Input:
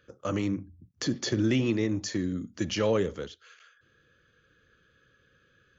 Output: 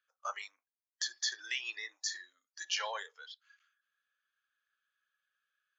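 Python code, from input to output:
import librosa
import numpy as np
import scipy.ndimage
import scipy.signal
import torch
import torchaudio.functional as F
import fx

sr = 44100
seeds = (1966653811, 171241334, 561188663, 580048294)

y = scipy.signal.sosfilt(scipy.signal.butter(6, 760.0, 'highpass', fs=sr, output='sos'), x)
y = fx.noise_reduce_blind(y, sr, reduce_db=18)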